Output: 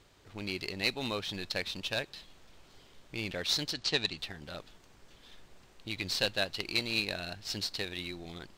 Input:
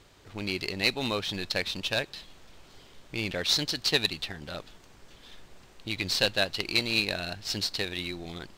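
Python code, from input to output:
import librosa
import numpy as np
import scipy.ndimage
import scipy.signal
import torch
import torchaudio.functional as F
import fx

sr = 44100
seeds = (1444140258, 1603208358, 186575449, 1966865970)

y = fx.lowpass(x, sr, hz=7800.0, slope=24, at=(3.73, 4.18))
y = F.gain(torch.from_numpy(y), -5.0).numpy()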